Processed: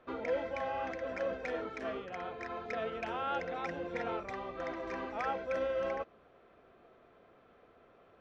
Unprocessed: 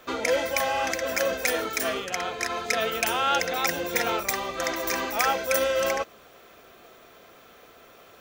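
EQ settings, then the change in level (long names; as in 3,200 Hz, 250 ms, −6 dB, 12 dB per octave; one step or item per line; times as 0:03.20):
head-to-tape spacing loss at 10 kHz 42 dB
−6.5 dB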